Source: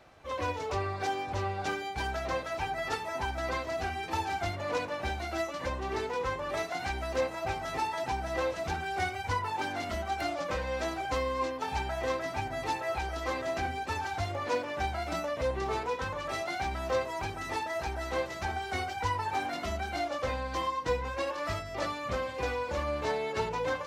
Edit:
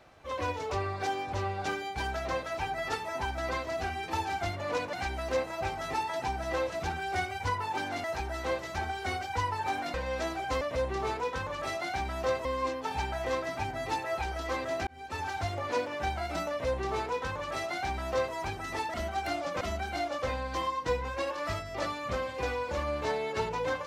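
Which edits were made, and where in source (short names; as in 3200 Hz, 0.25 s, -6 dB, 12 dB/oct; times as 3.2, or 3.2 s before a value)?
4.93–6.77 cut
9.88–10.55 swap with 17.71–19.61
13.64–14.04 fade in
15.27–17.11 copy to 11.22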